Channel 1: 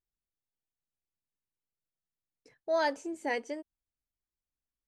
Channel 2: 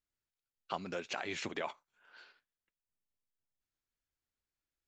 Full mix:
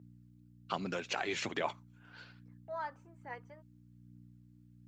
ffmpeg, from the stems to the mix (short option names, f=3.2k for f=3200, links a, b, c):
-filter_complex "[0:a]bandpass=f=1.2k:t=q:w=3.2:csg=0,volume=2dB[a];[1:a]aeval=exprs='val(0)+0.00178*(sin(2*PI*60*n/s)+sin(2*PI*2*60*n/s)/2+sin(2*PI*3*60*n/s)/3+sin(2*PI*4*60*n/s)/4+sin(2*PI*5*60*n/s)/5)':c=same,volume=2.5dB,asplit=2[b][c];[c]apad=whole_len=214990[d];[a][d]sidechaincompress=threshold=-56dB:ratio=8:attack=16:release=212[e];[e][b]amix=inputs=2:normalize=0,highpass=f=100:w=0.5412,highpass=f=100:w=1.3066,aphaser=in_gain=1:out_gain=1:delay=2.9:decay=0.33:speed=1.2:type=triangular"